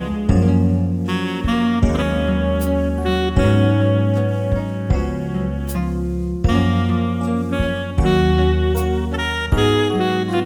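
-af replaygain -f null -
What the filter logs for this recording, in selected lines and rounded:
track_gain = +1.0 dB
track_peak = 0.557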